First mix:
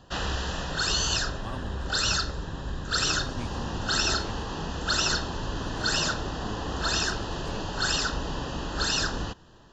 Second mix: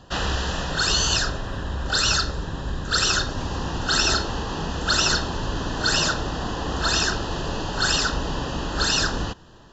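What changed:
speech -6.5 dB; background +5.0 dB

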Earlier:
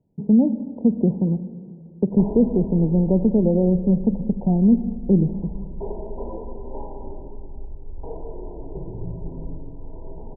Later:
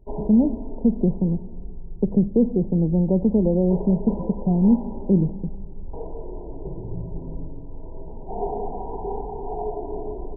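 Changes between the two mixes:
speech: send -7.5 dB; background: entry -2.10 s

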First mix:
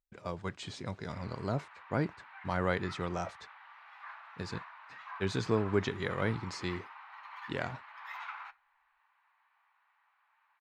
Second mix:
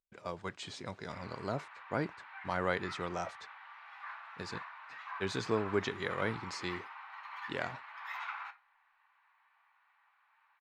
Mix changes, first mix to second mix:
background: send +9.0 dB; master: add low shelf 210 Hz -9.5 dB

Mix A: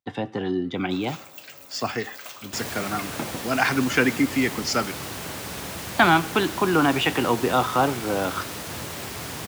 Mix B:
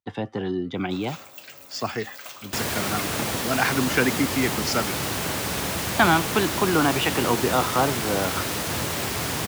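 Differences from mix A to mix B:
speech: send off; second sound +6.5 dB

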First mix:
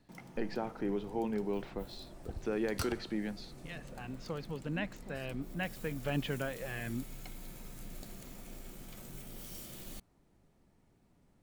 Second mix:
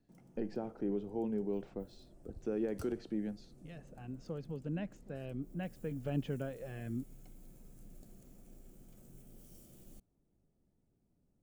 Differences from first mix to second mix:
background -7.5 dB; master: add ten-band EQ 1000 Hz -9 dB, 2000 Hz -10 dB, 4000 Hz -11 dB, 16000 Hz -7 dB

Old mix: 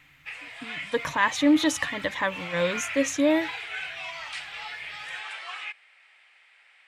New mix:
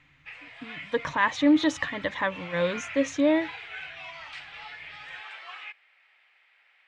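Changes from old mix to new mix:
background -3.5 dB; master: add air absorption 120 m

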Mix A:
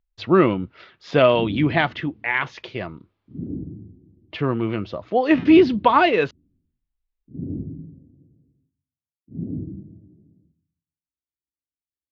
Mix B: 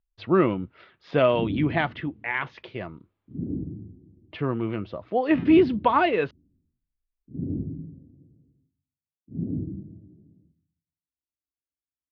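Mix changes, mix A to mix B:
speech -4.0 dB; master: add air absorption 190 m

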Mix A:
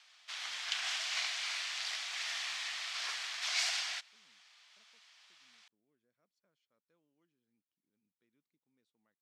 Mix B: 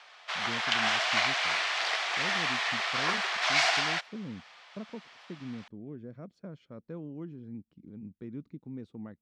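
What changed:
speech +11.0 dB; master: remove differentiator

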